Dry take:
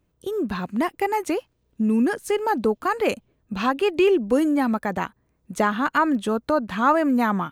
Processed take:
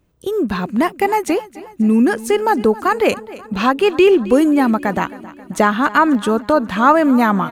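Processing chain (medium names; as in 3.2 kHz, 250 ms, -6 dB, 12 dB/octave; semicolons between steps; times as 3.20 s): feedback delay 268 ms, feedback 55%, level -18.5 dB; trim +7 dB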